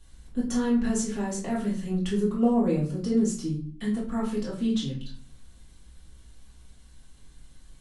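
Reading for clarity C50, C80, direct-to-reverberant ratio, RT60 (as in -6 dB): 5.5 dB, 11.0 dB, -7.5 dB, 0.50 s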